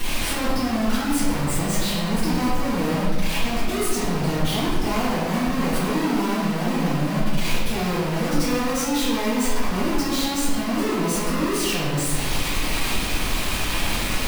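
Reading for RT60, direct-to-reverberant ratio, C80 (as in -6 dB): 1.5 s, -14.0 dB, 2.0 dB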